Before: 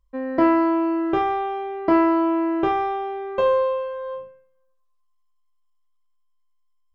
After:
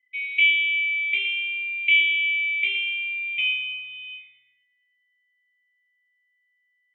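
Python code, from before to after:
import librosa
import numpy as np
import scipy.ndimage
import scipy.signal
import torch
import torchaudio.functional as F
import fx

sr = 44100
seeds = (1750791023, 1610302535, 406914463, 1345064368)

y = fx.band_swap(x, sr, width_hz=2000)
y = fx.vowel_filter(y, sr, vowel='i')
y = fx.echo_feedback(y, sr, ms=118, feedback_pct=37, wet_db=-10.0)
y = y * 10.0 ** (6.0 / 20.0)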